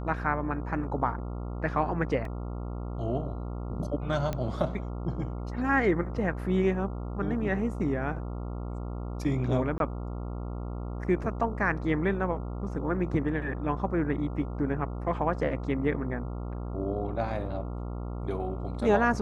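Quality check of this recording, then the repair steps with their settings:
buzz 60 Hz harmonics 23 -35 dBFS
2.25 gap 2.8 ms
4.33 pop -18 dBFS
9.78–9.8 gap 22 ms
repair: de-click; de-hum 60 Hz, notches 23; interpolate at 2.25, 2.8 ms; interpolate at 9.78, 22 ms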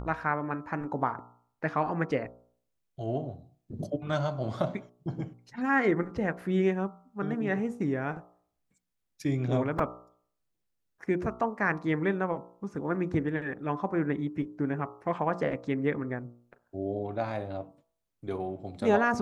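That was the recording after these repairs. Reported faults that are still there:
none

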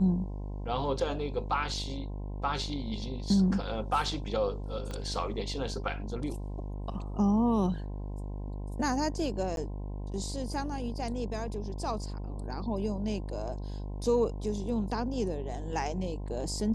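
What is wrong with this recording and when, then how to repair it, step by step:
buzz 50 Hz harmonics 21 -37 dBFS
4.91 pop -25 dBFS
9.56–9.57 gap 12 ms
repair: de-click; de-hum 50 Hz, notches 21; interpolate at 9.56, 12 ms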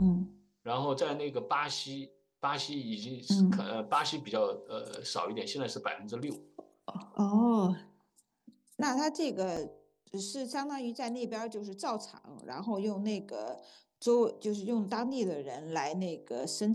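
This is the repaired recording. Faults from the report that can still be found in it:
4.91 pop

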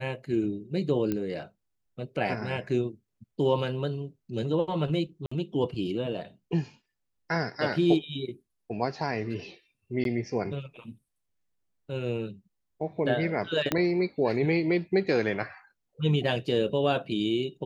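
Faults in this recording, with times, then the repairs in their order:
1.12 pop -17 dBFS
5.26–5.32 gap 55 ms
10.04–10.05 gap 12 ms
13.72 pop -10 dBFS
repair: de-click; interpolate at 5.26, 55 ms; interpolate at 10.04, 12 ms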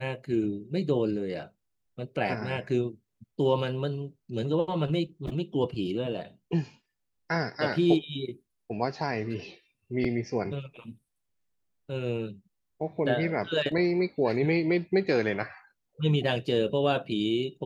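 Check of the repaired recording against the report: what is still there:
13.72 pop

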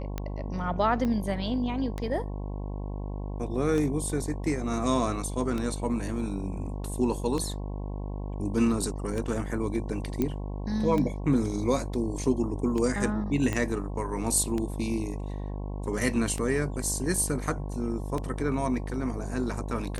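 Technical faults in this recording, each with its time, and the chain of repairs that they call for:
buzz 50 Hz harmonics 22 -34 dBFS
tick 33 1/3 rpm -18 dBFS
1.05 pop -19 dBFS
10.22 pop -15 dBFS
13.53 pop -16 dBFS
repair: de-click; de-hum 50 Hz, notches 22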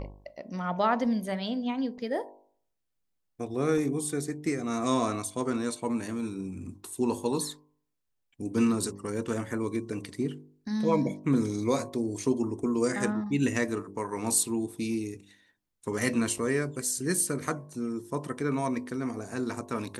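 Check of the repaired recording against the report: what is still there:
1.05 pop
10.22 pop
13.53 pop

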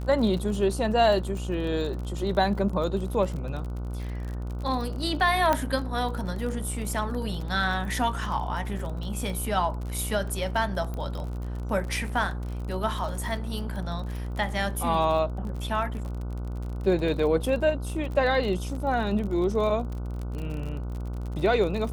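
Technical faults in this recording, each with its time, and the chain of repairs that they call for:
buzz 60 Hz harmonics 25 -32 dBFS
crackle 40/s -33 dBFS
5.53 pop -10 dBFS
10.94 pop -22 dBFS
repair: de-click; de-hum 60 Hz, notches 25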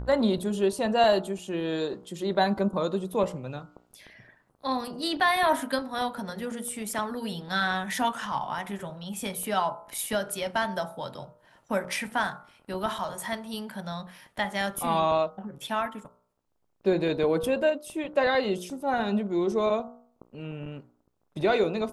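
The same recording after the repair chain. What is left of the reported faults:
none

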